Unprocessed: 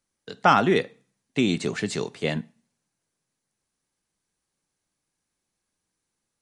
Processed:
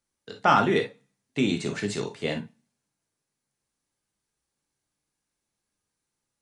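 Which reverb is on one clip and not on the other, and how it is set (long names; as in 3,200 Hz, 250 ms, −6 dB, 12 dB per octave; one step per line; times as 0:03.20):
reverb whose tail is shaped and stops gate 80 ms flat, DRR 4 dB
level −3.5 dB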